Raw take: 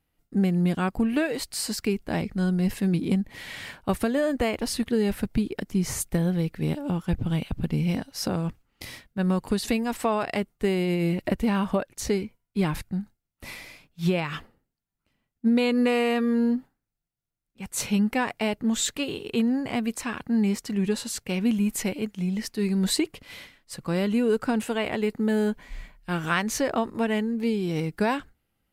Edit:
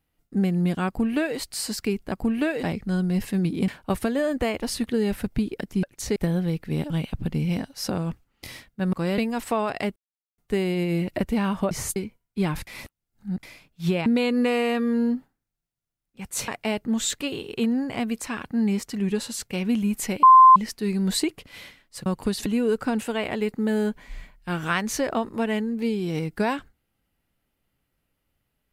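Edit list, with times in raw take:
0:00.87–0:01.38: duplicate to 0:02.12
0:03.17–0:03.67: remove
0:05.82–0:06.07: swap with 0:11.82–0:12.15
0:06.81–0:07.28: remove
0:09.31–0:09.71: swap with 0:23.82–0:24.07
0:10.49: splice in silence 0.42 s
0:12.86–0:13.62: reverse
0:14.25–0:15.47: remove
0:17.89–0:18.24: remove
0:21.99–0:22.32: beep over 1,040 Hz −7.5 dBFS

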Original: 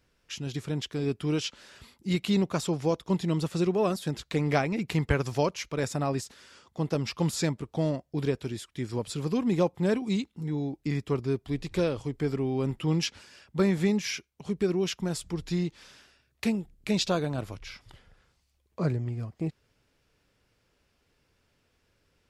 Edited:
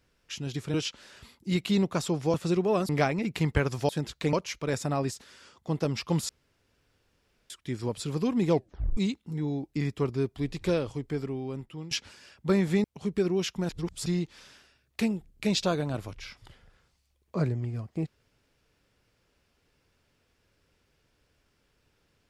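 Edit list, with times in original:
0:00.74–0:01.33: remove
0:02.93–0:03.44: remove
0:03.99–0:04.43: move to 0:05.43
0:07.39–0:08.60: fill with room tone
0:09.59: tape stop 0.48 s
0:11.87–0:13.01: fade out, to −17.5 dB
0:13.94–0:14.28: remove
0:15.13–0:15.50: reverse

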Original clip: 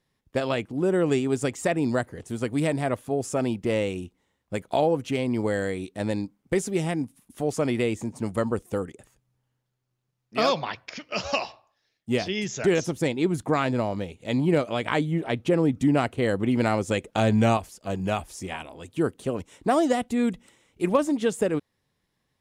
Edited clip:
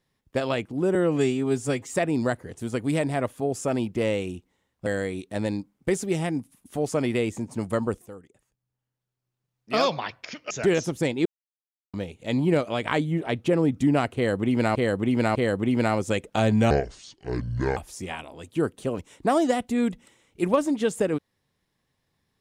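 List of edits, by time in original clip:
0:00.95–0:01.58: time-stretch 1.5×
0:04.55–0:05.51: remove
0:08.71–0:10.43: fade in quadratic, from −14 dB
0:11.15–0:12.51: remove
0:13.26–0:13.94: silence
0:16.16–0:16.76: repeat, 3 plays
0:17.51–0:18.18: play speed 63%

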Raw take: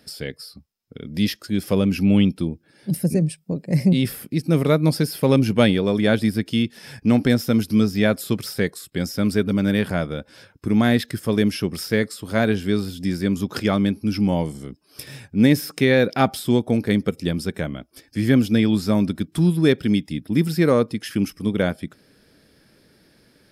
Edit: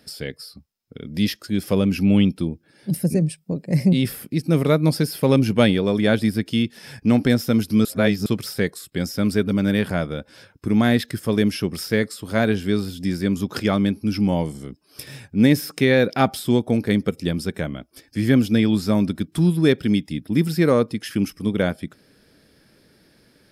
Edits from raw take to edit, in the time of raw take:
0:07.85–0:08.26: reverse

